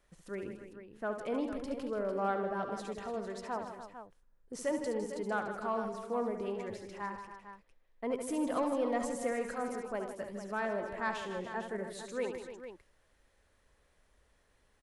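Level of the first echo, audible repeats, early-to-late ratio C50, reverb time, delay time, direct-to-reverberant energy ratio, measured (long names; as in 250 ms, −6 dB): −8.0 dB, 5, no reverb audible, no reverb audible, 71 ms, no reverb audible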